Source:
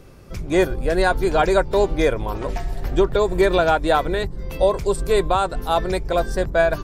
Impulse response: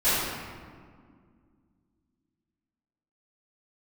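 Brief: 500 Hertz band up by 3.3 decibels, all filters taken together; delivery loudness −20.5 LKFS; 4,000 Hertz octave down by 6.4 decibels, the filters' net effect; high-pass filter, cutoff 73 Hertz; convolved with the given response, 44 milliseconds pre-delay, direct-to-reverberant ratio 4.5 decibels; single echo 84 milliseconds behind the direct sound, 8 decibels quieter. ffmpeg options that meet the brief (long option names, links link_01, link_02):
-filter_complex "[0:a]highpass=73,equalizer=frequency=500:width_type=o:gain=4.5,equalizer=frequency=4000:width_type=o:gain=-7.5,aecho=1:1:84:0.398,asplit=2[link_01][link_02];[1:a]atrim=start_sample=2205,adelay=44[link_03];[link_02][link_03]afir=irnorm=-1:irlink=0,volume=-20.5dB[link_04];[link_01][link_04]amix=inputs=2:normalize=0,volume=-5dB"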